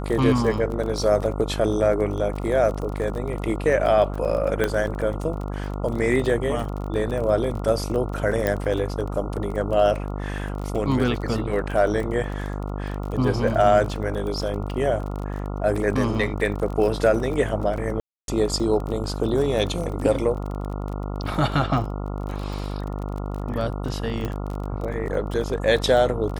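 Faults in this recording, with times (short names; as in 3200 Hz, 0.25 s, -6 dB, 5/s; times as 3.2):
buzz 50 Hz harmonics 28 -29 dBFS
crackle 27/s -29 dBFS
4.64 pop -9 dBFS
8.47 pop -10 dBFS
18–18.28 gap 0.282 s
24.25 pop -16 dBFS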